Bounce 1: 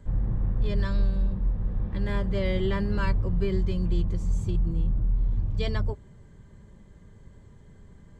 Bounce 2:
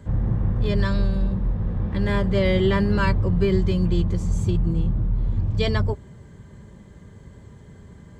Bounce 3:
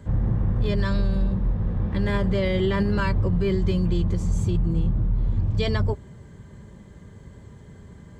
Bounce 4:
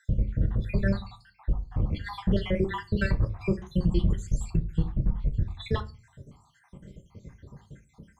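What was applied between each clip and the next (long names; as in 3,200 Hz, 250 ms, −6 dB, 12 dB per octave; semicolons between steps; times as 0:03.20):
high-pass filter 59 Hz; level +8 dB
brickwall limiter −14 dBFS, peak gain reduction 5.5 dB
time-frequency cells dropped at random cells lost 71%; rectangular room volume 120 cubic metres, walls furnished, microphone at 0.53 metres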